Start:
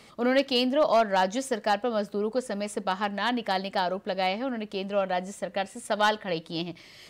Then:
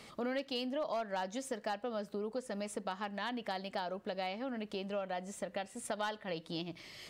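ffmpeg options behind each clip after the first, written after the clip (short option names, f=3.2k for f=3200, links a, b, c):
-af "acompressor=threshold=-37dB:ratio=3,volume=-1.5dB"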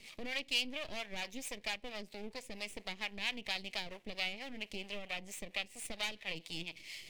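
-filter_complex "[0:a]aeval=exprs='max(val(0),0)':c=same,highshelf=f=1.8k:t=q:w=3:g=8.5,acrossover=split=510[a][b];[a]aeval=exprs='val(0)*(1-0.7/2+0.7/2*cos(2*PI*4.4*n/s))':c=same[c];[b]aeval=exprs='val(0)*(1-0.7/2-0.7/2*cos(2*PI*4.4*n/s))':c=same[d];[c][d]amix=inputs=2:normalize=0"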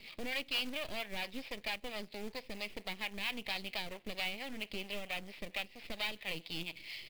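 -af "aresample=11025,asoftclip=type=tanh:threshold=-30dB,aresample=44100,acrusher=bits=3:mode=log:mix=0:aa=0.000001,volume=2.5dB"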